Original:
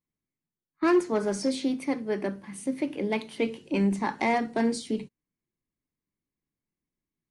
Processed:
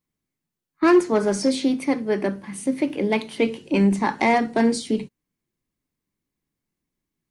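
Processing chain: 2.55–3.10 s: crackle 55 per s -57 dBFS; trim +6.5 dB

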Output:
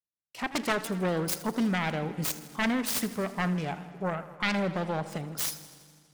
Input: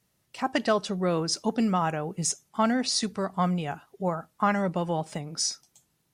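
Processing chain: self-modulated delay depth 0.45 ms; gate -51 dBFS, range -34 dB; in parallel at -2 dB: peak limiter -20.5 dBFS, peak gain reduction 9 dB; on the sum: FDN reverb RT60 2 s, low-frequency decay 1.4×, high-frequency decay 0.6×, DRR 18 dB; modulated delay 82 ms, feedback 74%, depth 90 cents, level -16.5 dB; trim -6 dB

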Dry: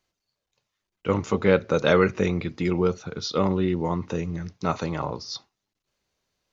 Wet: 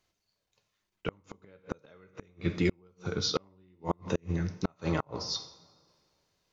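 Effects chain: two-slope reverb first 0.61 s, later 2 s, from -18 dB, DRR 7.5 dB; inverted gate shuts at -15 dBFS, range -38 dB

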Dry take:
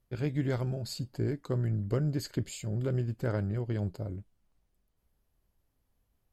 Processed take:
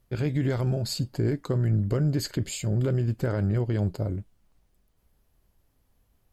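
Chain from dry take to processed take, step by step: peak limiter -25 dBFS, peak gain reduction 7 dB; trim +8 dB

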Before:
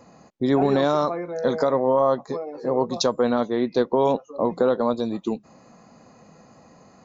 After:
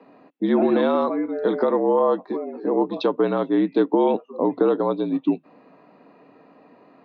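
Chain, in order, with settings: small resonant body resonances 330/2700 Hz, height 12 dB, ringing for 60 ms; mistuned SSB -51 Hz 290–3600 Hz

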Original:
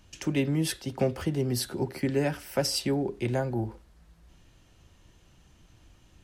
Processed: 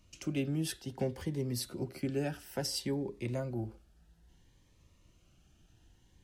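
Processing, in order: Shepard-style phaser rising 0.6 Hz; trim -6.5 dB

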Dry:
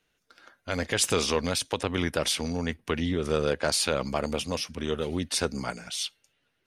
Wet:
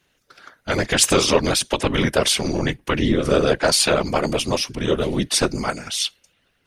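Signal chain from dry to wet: whisper effect; trim +8.5 dB

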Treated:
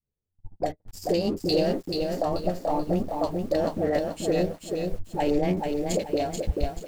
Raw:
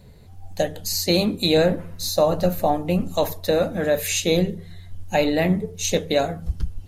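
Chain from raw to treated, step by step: local Wiener filter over 15 samples; compression 8:1, threshold -30 dBFS, peak gain reduction 16.5 dB; peaking EQ 340 Hz +8.5 dB 1.1 oct; phase dispersion highs, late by 64 ms, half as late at 500 Hz; formant shift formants +2 st; gate -31 dBFS, range -50 dB; bass shelf 93 Hz +8.5 dB; bit-crushed delay 434 ms, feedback 35%, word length 9-bit, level -4 dB; trim +3 dB

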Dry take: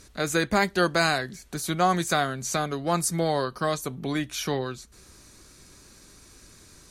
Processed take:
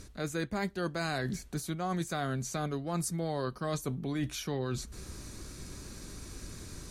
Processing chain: bass shelf 380 Hz +8.5 dB; reverse; compression 6:1, threshold -34 dBFS, peak gain reduction 19 dB; reverse; trim +2.5 dB

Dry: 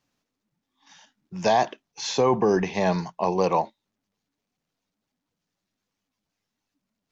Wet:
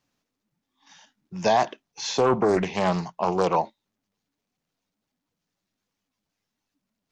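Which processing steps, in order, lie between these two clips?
1.56–3.56 s: loudspeaker Doppler distortion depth 0.31 ms

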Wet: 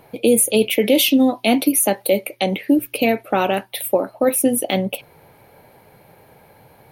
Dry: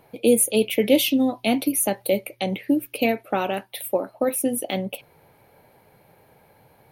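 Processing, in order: 0.67–2.79 s: high-pass 180 Hz 12 dB/octave; peak limiter -12 dBFS, peak gain reduction 6 dB; trim +6.5 dB

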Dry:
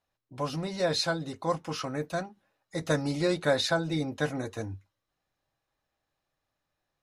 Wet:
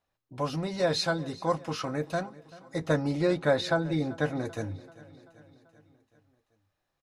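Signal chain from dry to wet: treble shelf 3.5 kHz -4 dB, from 2.78 s -11.5 dB, from 4.45 s -2 dB; feedback delay 387 ms, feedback 59%, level -20 dB; trim +1.5 dB

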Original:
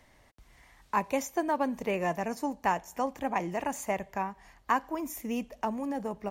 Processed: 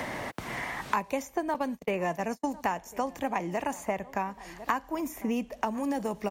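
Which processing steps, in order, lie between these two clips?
echo from a far wall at 180 m, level -23 dB; 1.54–2.54 s: gate -33 dBFS, range -41 dB; three bands compressed up and down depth 100%

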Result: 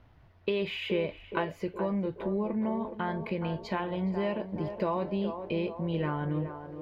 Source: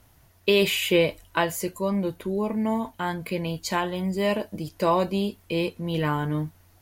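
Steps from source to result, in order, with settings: compression 3:1, threshold -28 dBFS, peak gain reduction 9.5 dB; distance through air 320 m; band-passed feedback delay 420 ms, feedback 64%, band-pass 600 Hz, level -7 dB

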